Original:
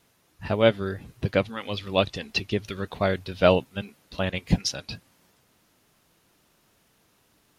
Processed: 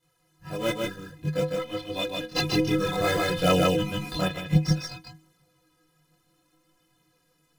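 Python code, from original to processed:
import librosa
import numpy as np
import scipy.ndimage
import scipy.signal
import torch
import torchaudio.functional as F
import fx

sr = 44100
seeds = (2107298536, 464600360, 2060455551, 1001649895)

p1 = fx.peak_eq(x, sr, hz=800.0, db=-5.0, octaves=0.77)
p2 = fx.sample_hold(p1, sr, seeds[0], rate_hz=3100.0, jitter_pct=20)
p3 = p1 + F.gain(torch.from_numpy(p2), -4.5).numpy()
p4 = fx.stiff_resonator(p3, sr, f0_hz=150.0, decay_s=0.29, stiffness=0.03)
p5 = fx.chorus_voices(p4, sr, voices=2, hz=0.57, base_ms=24, depth_ms=2.7, mix_pct=65)
p6 = p5 + fx.echo_single(p5, sr, ms=153, db=-3.0, dry=0)
p7 = fx.env_flatten(p6, sr, amount_pct=50, at=(2.35, 4.27), fade=0.02)
y = F.gain(torch.from_numpy(p7), 7.5).numpy()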